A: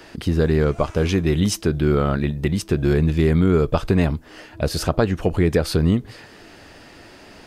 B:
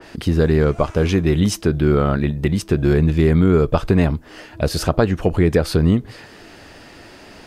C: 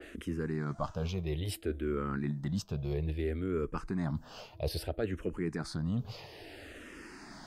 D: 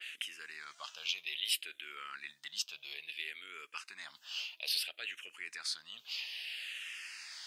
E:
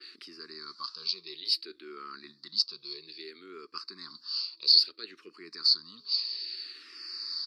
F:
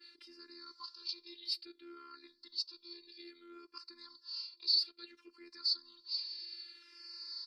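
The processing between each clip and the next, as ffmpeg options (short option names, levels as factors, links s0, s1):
-af "adynamicequalizer=threshold=0.00891:dfrequency=2400:dqfactor=0.7:tfrequency=2400:tqfactor=0.7:attack=5:release=100:ratio=0.375:range=1.5:mode=cutabove:tftype=highshelf,volume=1.33"
-filter_complex "[0:a]areverse,acompressor=threshold=0.0562:ratio=4,areverse,asplit=2[s0][s1];[s1]afreqshift=-0.6[s2];[s0][s2]amix=inputs=2:normalize=1,volume=0.596"
-af "highpass=f=2800:t=q:w=2.8,volume=1.88"
-af "firequalizer=gain_entry='entry(120,0);entry(170,8);entry(380,12);entry(670,-30);entry(1100,2);entry(1600,-12);entry(3100,-24);entry(4500,13);entry(6400,-21);entry(13000,-25)':delay=0.05:min_phase=1,volume=2.24"
-af "afftfilt=real='hypot(re,im)*cos(PI*b)':imag='0':win_size=512:overlap=0.75,bandreject=f=620:w=12,volume=0.501"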